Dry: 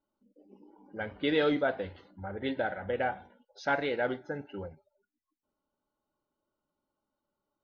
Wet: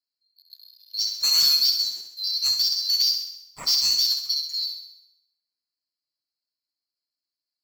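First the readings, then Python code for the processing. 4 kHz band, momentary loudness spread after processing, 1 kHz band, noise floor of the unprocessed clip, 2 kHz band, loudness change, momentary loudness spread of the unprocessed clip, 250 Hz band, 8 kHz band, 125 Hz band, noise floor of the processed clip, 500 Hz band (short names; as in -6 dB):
+25.5 dB, 12 LU, -12.5 dB, under -85 dBFS, -10.5 dB, +12.0 dB, 16 LU, under -20 dB, n/a, under -10 dB, under -85 dBFS, under -25 dB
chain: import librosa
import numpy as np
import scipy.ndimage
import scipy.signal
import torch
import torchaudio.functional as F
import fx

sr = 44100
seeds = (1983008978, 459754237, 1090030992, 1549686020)

y = fx.band_swap(x, sr, width_hz=4000)
y = fx.leveller(y, sr, passes=3)
y = fx.echo_thinned(y, sr, ms=66, feedback_pct=57, hz=320.0, wet_db=-7)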